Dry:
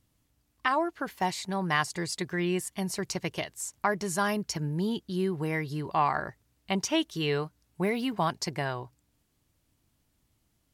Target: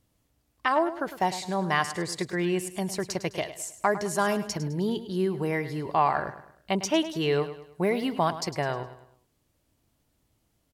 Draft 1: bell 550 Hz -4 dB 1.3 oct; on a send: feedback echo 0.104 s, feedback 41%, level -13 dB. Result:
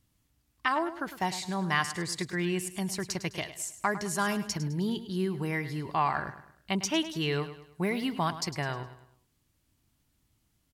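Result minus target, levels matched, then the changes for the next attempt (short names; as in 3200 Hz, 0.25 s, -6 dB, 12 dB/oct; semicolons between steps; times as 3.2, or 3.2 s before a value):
500 Hz band -4.0 dB
change: bell 550 Hz +5.5 dB 1.3 oct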